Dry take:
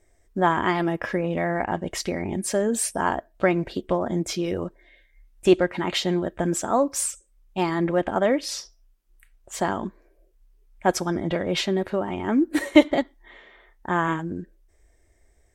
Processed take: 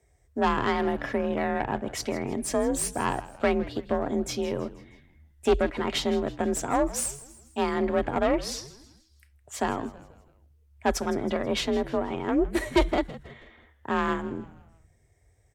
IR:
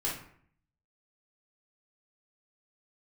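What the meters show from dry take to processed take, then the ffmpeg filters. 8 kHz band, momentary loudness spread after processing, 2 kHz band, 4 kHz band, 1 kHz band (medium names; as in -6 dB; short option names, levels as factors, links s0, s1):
-3.5 dB, 11 LU, -4.0 dB, -3.5 dB, -2.5 dB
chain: -filter_complex "[0:a]aeval=exprs='(tanh(5.62*val(0)+0.65)-tanh(0.65))/5.62':c=same,afreqshift=41,asplit=5[s0][s1][s2][s3][s4];[s1]adelay=161,afreqshift=-91,volume=0.141[s5];[s2]adelay=322,afreqshift=-182,volume=0.0661[s6];[s3]adelay=483,afreqshift=-273,volume=0.0313[s7];[s4]adelay=644,afreqshift=-364,volume=0.0146[s8];[s0][s5][s6][s7][s8]amix=inputs=5:normalize=0"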